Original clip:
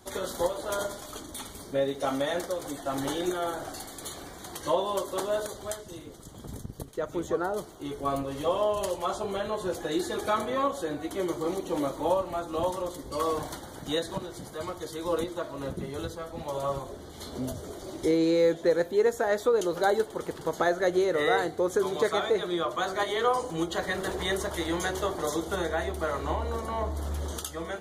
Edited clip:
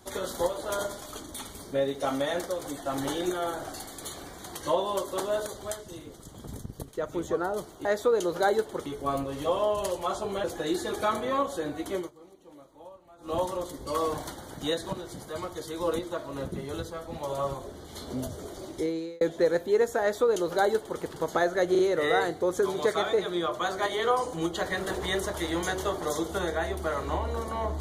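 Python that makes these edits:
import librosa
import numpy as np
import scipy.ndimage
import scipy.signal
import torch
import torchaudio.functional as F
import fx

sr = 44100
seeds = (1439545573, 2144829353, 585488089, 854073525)

y = fx.edit(x, sr, fx.cut(start_s=9.43, length_s=0.26),
    fx.fade_down_up(start_s=11.19, length_s=1.41, db=-22.0, fade_s=0.17),
    fx.fade_out_span(start_s=17.83, length_s=0.63),
    fx.duplicate(start_s=19.26, length_s=1.01, to_s=7.85),
    fx.stutter(start_s=20.96, slice_s=0.04, count=3), tone=tone)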